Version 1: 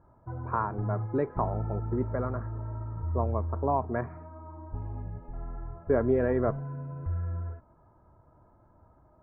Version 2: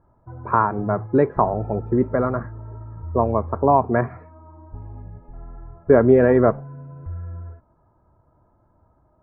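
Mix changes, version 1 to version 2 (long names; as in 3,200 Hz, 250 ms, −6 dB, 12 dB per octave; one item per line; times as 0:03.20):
speech +11.5 dB
background: add high-frequency loss of the air 200 metres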